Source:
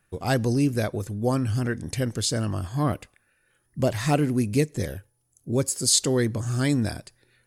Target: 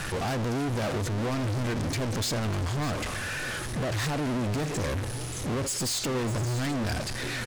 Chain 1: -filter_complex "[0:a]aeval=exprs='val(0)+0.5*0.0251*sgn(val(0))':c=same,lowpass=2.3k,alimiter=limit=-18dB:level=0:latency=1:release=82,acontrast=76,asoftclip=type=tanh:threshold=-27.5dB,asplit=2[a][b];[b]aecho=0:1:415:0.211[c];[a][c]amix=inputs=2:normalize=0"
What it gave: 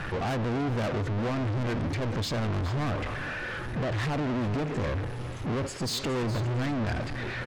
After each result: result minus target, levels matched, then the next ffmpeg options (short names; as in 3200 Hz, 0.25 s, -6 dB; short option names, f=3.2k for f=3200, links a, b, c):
8000 Hz band -9.5 dB; echo 0.187 s early
-filter_complex "[0:a]aeval=exprs='val(0)+0.5*0.0251*sgn(val(0))':c=same,lowpass=7.2k,alimiter=limit=-18dB:level=0:latency=1:release=82,acontrast=76,asoftclip=type=tanh:threshold=-27.5dB,asplit=2[a][b];[b]aecho=0:1:415:0.211[c];[a][c]amix=inputs=2:normalize=0"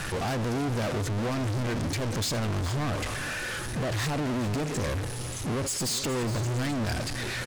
echo 0.187 s early
-filter_complex "[0:a]aeval=exprs='val(0)+0.5*0.0251*sgn(val(0))':c=same,lowpass=7.2k,alimiter=limit=-18dB:level=0:latency=1:release=82,acontrast=76,asoftclip=type=tanh:threshold=-27.5dB,asplit=2[a][b];[b]aecho=0:1:602:0.211[c];[a][c]amix=inputs=2:normalize=0"